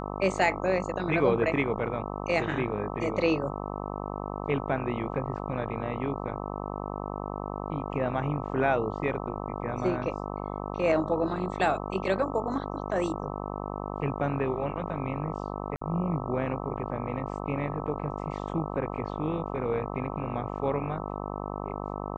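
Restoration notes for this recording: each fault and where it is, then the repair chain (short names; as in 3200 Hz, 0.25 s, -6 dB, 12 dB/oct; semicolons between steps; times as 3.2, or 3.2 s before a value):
buzz 50 Hz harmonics 26 -35 dBFS
15.76–15.81 gap 54 ms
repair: de-hum 50 Hz, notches 26; interpolate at 15.76, 54 ms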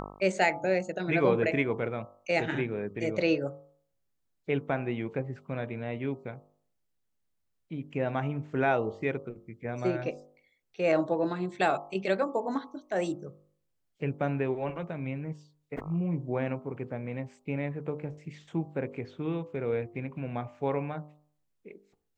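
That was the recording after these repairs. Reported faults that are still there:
none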